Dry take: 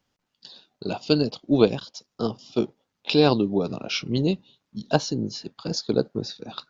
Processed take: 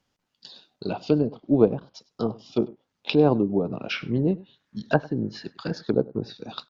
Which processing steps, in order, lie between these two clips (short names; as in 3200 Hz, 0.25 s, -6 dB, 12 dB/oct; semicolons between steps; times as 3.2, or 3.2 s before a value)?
treble ducked by the level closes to 940 Hz, closed at -21 dBFS; 3.9–5.91 bell 1700 Hz +13 dB 0.52 oct; echo 0.1 s -22 dB